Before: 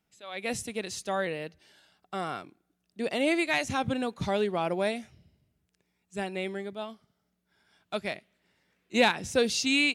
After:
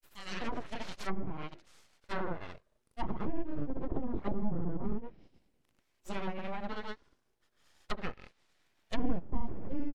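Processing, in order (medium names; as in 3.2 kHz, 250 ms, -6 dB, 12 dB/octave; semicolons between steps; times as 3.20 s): granulator 122 ms, grains 26 per s; full-wave rectifier; low-pass that closes with the level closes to 340 Hz, closed at -28.5 dBFS; trim +4.5 dB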